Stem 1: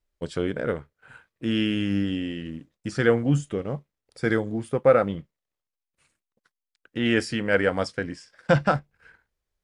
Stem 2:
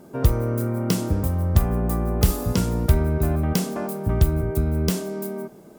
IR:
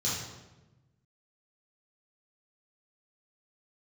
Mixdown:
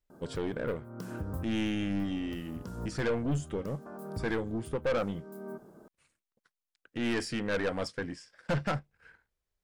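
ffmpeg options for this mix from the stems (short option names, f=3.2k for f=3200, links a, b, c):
-filter_complex "[0:a]aeval=exprs='(tanh(12.6*val(0)+0.25)-tanh(0.25))/12.6':c=same,volume=-3.5dB,asplit=2[a][b];[1:a]highshelf=f=1.8k:t=q:w=3:g=-6,acompressor=threshold=-24dB:ratio=5,adelay=100,volume=-8dB[c];[b]apad=whole_len=259312[d];[c][d]sidechaincompress=threshold=-47dB:ratio=4:attack=8.1:release=374[e];[a][e]amix=inputs=2:normalize=0"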